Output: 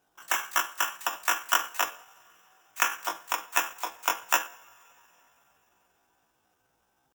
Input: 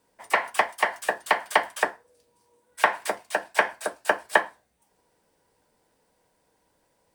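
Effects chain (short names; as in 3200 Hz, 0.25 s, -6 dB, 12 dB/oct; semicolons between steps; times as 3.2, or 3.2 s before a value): FFT order left unsorted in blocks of 16 samples; two-slope reverb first 0.44 s, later 4 s, from -21 dB, DRR 11 dB; pitch shift +8 st; gain -2.5 dB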